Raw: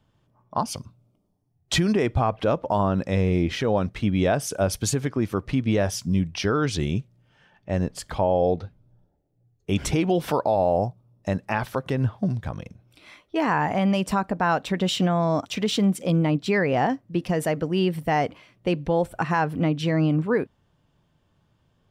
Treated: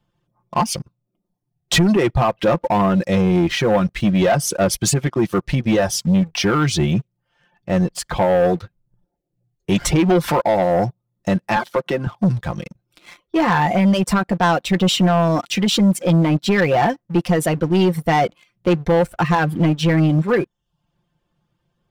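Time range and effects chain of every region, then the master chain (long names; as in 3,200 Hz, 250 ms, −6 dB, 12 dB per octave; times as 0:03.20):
0:11.56–0:12.07: high-pass filter 190 Hz 24 dB per octave + high-shelf EQ 8,100 Hz −11.5 dB
whole clip: reverb reduction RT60 0.5 s; comb filter 5.7 ms, depth 63%; leveller curve on the samples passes 2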